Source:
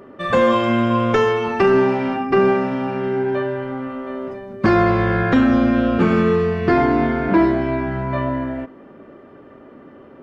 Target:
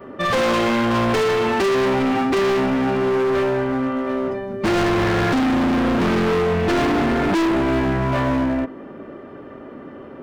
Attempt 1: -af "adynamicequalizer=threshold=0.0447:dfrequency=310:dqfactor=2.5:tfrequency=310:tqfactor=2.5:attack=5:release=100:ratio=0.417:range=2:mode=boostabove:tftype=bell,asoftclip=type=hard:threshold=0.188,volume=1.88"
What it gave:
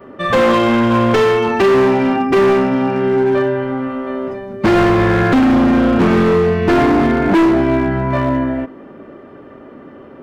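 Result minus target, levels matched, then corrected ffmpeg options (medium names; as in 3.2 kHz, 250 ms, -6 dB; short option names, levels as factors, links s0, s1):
hard clipper: distortion -5 dB
-af "adynamicequalizer=threshold=0.0447:dfrequency=310:dqfactor=2.5:tfrequency=310:tqfactor=2.5:attack=5:release=100:ratio=0.417:range=2:mode=boostabove:tftype=bell,asoftclip=type=hard:threshold=0.075,volume=1.88"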